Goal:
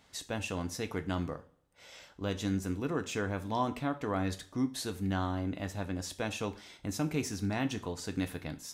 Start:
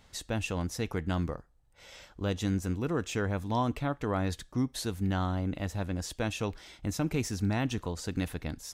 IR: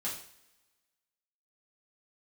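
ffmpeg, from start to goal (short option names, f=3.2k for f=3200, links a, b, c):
-filter_complex "[0:a]highpass=f=150:p=1,asplit=2[a][b];[1:a]atrim=start_sample=2205,asetrate=61740,aresample=44100[c];[b][c]afir=irnorm=-1:irlink=0,volume=-5dB[d];[a][d]amix=inputs=2:normalize=0,volume=-3.5dB"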